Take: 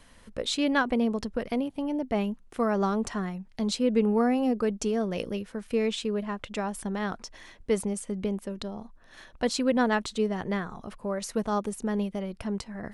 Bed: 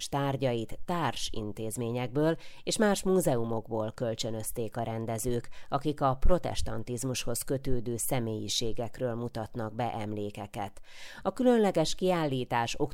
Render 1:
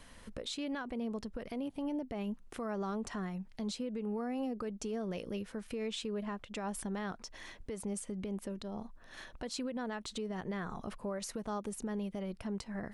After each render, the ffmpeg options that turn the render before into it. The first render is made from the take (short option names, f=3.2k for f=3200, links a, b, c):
-af "acompressor=threshold=-28dB:ratio=6,alimiter=level_in=6dB:limit=-24dB:level=0:latency=1:release=223,volume=-6dB"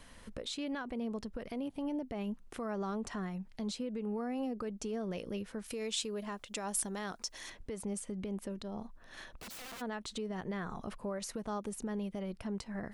-filter_complex "[0:a]asettb=1/sr,asplit=3[a][b][c];[a]atrim=end=5.644[d];[b]atrim=start=5.64:end=7.5,asetpts=PTS-STARTPTS,afade=t=in:d=0.004:c=qsin,afade=t=out:st=1.856:d=0.004:c=qsin,bass=f=250:g=-5,treble=f=4k:g=11[e];[c]atrim=start=7.496[f];[d][e]acrossfade=d=0.004:c1=hsin:c2=qsin[g];[g][f]acrossfade=d=0.004:c1=qsin:c2=hsin,asplit=3[h][i][j];[h]afade=t=out:st=9.31:d=0.02[k];[i]aeval=exprs='(mod(126*val(0)+1,2)-1)/126':c=same,afade=t=in:st=9.31:d=0.02,afade=t=out:st=9.8:d=0.02[l];[j]afade=t=in:st=9.8:d=0.02[m];[k][l][m]amix=inputs=3:normalize=0"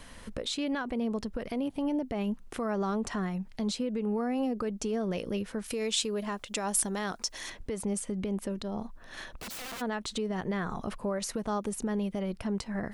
-af "volume=6.5dB"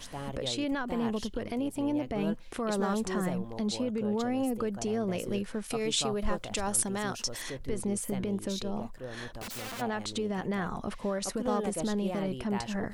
-filter_complex "[1:a]volume=-9.5dB[a];[0:a][a]amix=inputs=2:normalize=0"